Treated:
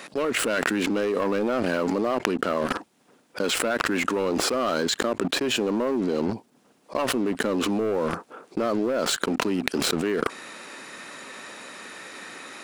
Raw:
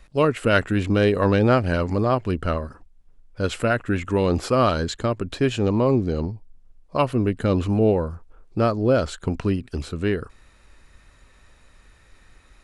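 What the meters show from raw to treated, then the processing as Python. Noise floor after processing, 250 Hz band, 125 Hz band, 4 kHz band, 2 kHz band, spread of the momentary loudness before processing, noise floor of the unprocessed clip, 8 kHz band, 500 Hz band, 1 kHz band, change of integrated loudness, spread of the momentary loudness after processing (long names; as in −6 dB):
−62 dBFS, −3.0 dB, −15.0 dB, +5.5 dB, +1.0 dB, 10 LU, −54 dBFS, +10.0 dB, −3.5 dB, −2.5 dB, −3.0 dB, 15 LU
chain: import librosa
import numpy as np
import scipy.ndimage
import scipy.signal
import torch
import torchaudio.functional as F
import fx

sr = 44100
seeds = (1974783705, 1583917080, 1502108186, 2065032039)

y = scipy.signal.sosfilt(scipy.signal.butter(4, 220.0, 'highpass', fs=sr, output='sos'), x)
y = fx.leveller(y, sr, passes=3)
y = fx.env_flatten(y, sr, amount_pct=100)
y = y * librosa.db_to_amplitude(-16.0)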